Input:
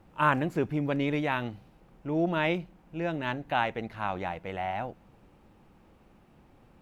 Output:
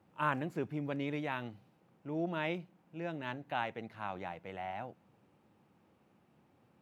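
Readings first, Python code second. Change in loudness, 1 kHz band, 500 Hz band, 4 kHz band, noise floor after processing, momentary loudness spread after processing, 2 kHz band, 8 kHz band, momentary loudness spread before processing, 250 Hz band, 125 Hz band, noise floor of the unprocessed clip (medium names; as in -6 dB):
-8.5 dB, -8.5 dB, -8.5 dB, -8.5 dB, -70 dBFS, 9 LU, -8.5 dB, no reading, 11 LU, -8.5 dB, -8.5 dB, -60 dBFS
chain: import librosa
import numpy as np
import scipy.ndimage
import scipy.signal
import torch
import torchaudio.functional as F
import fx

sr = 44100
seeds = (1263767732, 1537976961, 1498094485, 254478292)

y = scipy.signal.sosfilt(scipy.signal.butter(4, 95.0, 'highpass', fs=sr, output='sos'), x)
y = y * 10.0 ** (-8.5 / 20.0)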